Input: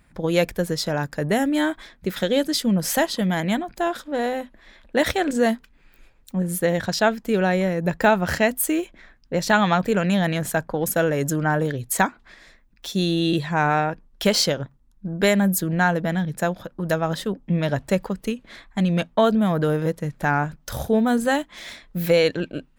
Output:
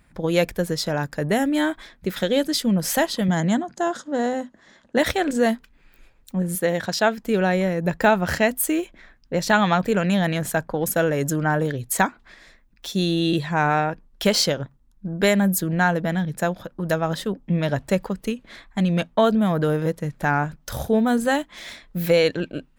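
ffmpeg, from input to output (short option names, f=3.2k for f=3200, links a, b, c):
-filter_complex "[0:a]asettb=1/sr,asplit=3[a][b][c];[a]atrim=end=3.284[d];[b]atrim=start=3.28:end=4.98,asetpts=PTS-STARTPTS,afade=t=in:d=0.004:c=qsin,afade=t=out:st=1.696:d=0.004:c=qsin,highpass=110,equalizer=f=160:t=q:w=4:g=6,equalizer=f=250:t=q:w=4:g=4,equalizer=f=2.4k:t=q:w=4:g=-10,equalizer=f=3.7k:t=q:w=4:g=-4,equalizer=f=6.6k:t=q:w=4:g=9,lowpass=f=9.1k:w=0.5412,lowpass=f=9.1k:w=1.3066[e];[c]atrim=start=4.976[f];[d][e]acrossfade=d=0.004:c1=hsin:c2=qsin[g];[g][f]acrossfade=d=0.004:c1=qsin:c2=hsin,asettb=1/sr,asplit=3[h][i][j];[h]atrim=end=6.554[k];[i]atrim=start=6.55:end=7.18,asetpts=PTS-STARTPTS,afade=t=in:d=0.004:c=qsin,afade=t=out:st=0.626:d=0.004:c=qsin,highpass=f=180:p=1[l];[j]atrim=start=7.176[m];[k][l]acrossfade=d=0.004:c1=hsin:c2=qsin[n];[n][m]acrossfade=d=0.004:c1=qsin:c2=hsin"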